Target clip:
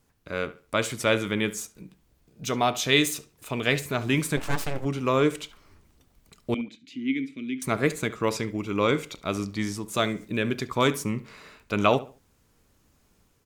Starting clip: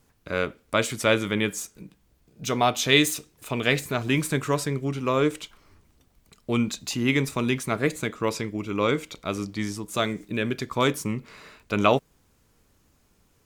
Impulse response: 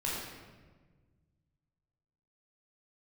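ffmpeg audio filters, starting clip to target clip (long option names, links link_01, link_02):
-filter_complex "[0:a]asettb=1/sr,asplit=3[link_01][link_02][link_03];[link_01]atrim=end=6.544[link_04];[link_02]atrim=start=6.54:end=7.62,asetpts=PTS-STARTPTS,afade=type=in:duration=0.004:curve=qsin,afade=type=out:start_time=1.076:duration=0.004:curve=qsin,asplit=3[link_05][link_06][link_07];[link_05]bandpass=frequency=270:width_type=q:width=8,volume=0dB[link_08];[link_06]bandpass=frequency=2290:width_type=q:width=8,volume=-6dB[link_09];[link_07]bandpass=frequency=3010:width_type=q:width=8,volume=-9dB[link_10];[link_08][link_09][link_10]amix=inputs=3:normalize=0[link_11];[link_03]atrim=start=7.616[link_12];[link_04][link_11]acrossfade=duration=0.004:curve1=hsin:curve2=qsin[link_13];[link_13][link_12]acrossfade=duration=0.004:curve1=qsin:curve2=hsin,dynaudnorm=framelen=440:gausssize=3:maxgain=4.5dB,asplit=2[link_14][link_15];[link_15]adelay=70,lowpass=frequency=3100:poles=1,volume=-16dB,asplit=2[link_16][link_17];[link_17]adelay=70,lowpass=frequency=3100:poles=1,volume=0.3,asplit=2[link_18][link_19];[link_19]adelay=70,lowpass=frequency=3100:poles=1,volume=0.3[link_20];[link_16][link_18][link_20]amix=inputs=3:normalize=0[link_21];[link_14][link_21]amix=inputs=2:normalize=0,asplit=3[link_22][link_23][link_24];[link_22]afade=type=out:start_time=4.36:duration=0.02[link_25];[link_23]aeval=exprs='abs(val(0))':channel_layout=same,afade=type=in:start_time=4.36:duration=0.02,afade=type=out:start_time=4.84:duration=0.02[link_26];[link_24]afade=type=in:start_time=4.84:duration=0.02[link_27];[link_25][link_26][link_27]amix=inputs=3:normalize=0,volume=-4dB"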